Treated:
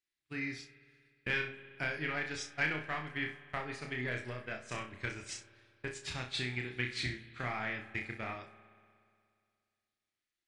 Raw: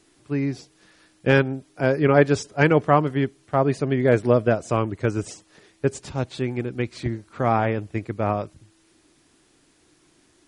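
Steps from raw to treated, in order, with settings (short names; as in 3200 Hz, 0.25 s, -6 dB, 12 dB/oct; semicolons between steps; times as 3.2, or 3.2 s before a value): in parallel at -8.5 dB: hard clip -16.5 dBFS, distortion -8 dB; on the sum: compressor 8:1, threshold -24 dBFS, peak gain reduction 14.5 dB; graphic EQ 125/250/500/1000/2000/4000 Hz -5/-6/-10/-5/+10/+6 dB; on a send: flutter echo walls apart 5.5 m, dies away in 0.4 s; on the sum: expander -30 dBFS; spring tank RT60 2.3 s, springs 59 ms, chirp 65 ms, DRR 13 dB; gain -6.5 dB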